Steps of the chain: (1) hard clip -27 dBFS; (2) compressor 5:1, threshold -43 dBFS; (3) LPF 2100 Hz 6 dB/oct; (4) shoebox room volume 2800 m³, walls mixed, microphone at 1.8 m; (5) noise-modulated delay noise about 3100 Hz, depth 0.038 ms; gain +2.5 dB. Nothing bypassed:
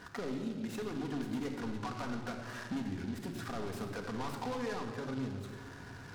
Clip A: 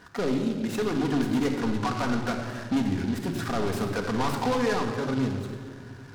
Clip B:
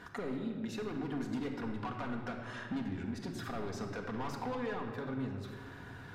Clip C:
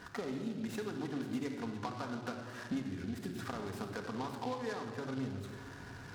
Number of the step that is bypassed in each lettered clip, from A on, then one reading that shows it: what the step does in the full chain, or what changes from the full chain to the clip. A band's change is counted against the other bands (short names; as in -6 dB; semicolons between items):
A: 2, mean gain reduction 9.5 dB; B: 5, 8 kHz band -3.5 dB; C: 1, distortion -6 dB